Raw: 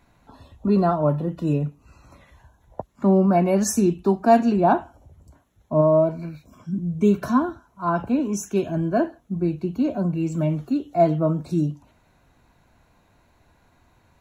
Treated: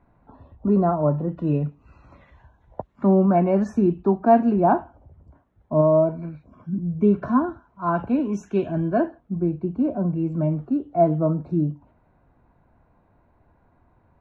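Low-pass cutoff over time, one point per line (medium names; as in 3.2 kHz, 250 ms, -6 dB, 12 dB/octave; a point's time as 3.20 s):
1.14 s 1.2 kHz
1.62 s 2.6 kHz
2.94 s 2.6 kHz
3.70 s 1.5 kHz
7.28 s 1.5 kHz
8.01 s 2.6 kHz
8.83 s 2.6 kHz
9.49 s 1.2 kHz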